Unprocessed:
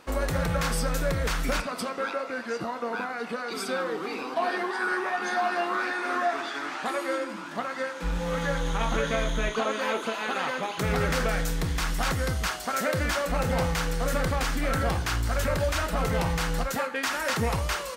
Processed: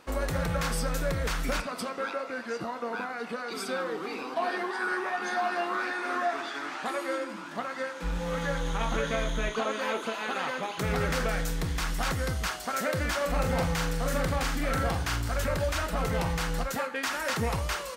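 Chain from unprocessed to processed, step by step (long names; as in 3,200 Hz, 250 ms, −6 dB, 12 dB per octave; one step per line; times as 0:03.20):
0:13.17–0:15.32: double-tracking delay 42 ms −7 dB
level −2.5 dB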